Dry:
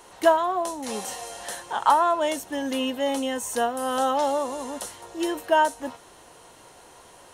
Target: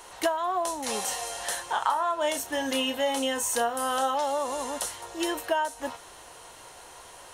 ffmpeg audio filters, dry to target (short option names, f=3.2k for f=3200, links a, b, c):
-filter_complex "[0:a]equalizer=f=220:t=o:w=2.3:g=-8.5,acompressor=threshold=-27dB:ratio=10,asettb=1/sr,asplit=3[a][b][c];[a]atrim=end=1.734[d];[b]atrim=start=1.73:end=4.15,asetpts=PTS-STARTPTS,afade=t=in:d=0.004:c=qsin,afade=t=out:st=2.416:d=0.004:c=qsin,asplit=2[e][f];[f]adelay=30,volume=-8.5dB[g];[e][g]amix=inputs=2:normalize=0,atrim=end_sample=106722[h];[c]atrim=start=4.146[i];[d][h]acrossfade=d=0.004:c1=hsin:c2=qsin[j];[j][i]acrossfade=d=0.004:c1=qsin:c2=hsin,volume=4dB"